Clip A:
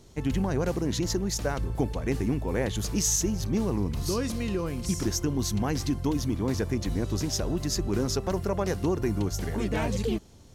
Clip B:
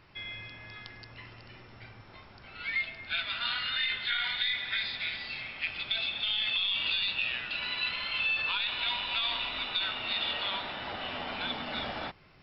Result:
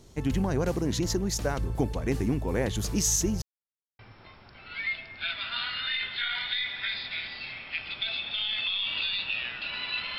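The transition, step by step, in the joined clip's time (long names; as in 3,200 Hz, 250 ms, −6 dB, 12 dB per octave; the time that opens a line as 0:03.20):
clip A
0:03.42–0:03.99: silence
0:03.99: continue with clip B from 0:01.88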